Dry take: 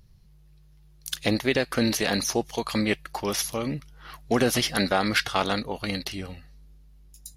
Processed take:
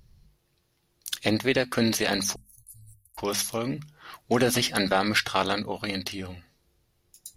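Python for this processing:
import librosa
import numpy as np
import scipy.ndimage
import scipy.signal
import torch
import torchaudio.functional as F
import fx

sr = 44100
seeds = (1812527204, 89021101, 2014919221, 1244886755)

y = fx.cheby2_bandstop(x, sr, low_hz=240.0, high_hz=3400.0, order=4, stop_db=60, at=(2.34, 3.17), fade=0.02)
y = fx.hum_notches(y, sr, base_hz=50, count=5)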